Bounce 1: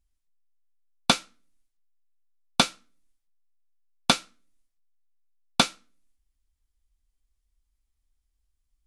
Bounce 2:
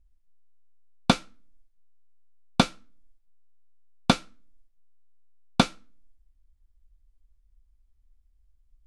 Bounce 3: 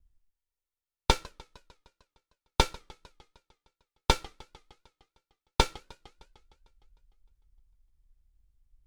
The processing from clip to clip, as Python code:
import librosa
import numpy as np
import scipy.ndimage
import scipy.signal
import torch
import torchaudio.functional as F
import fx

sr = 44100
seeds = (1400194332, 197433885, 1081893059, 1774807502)

y1 = fx.tilt_eq(x, sr, slope=-2.5)
y2 = fx.lower_of_two(y1, sr, delay_ms=2.2)
y2 = fx.echo_warbled(y2, sr, ms=152, feedback_pct=65, rate_hz=2.8, cents=212, wet_db=-23.0)
y2 = F.gain(torch.from_numpy(y2), -1.5).numpy()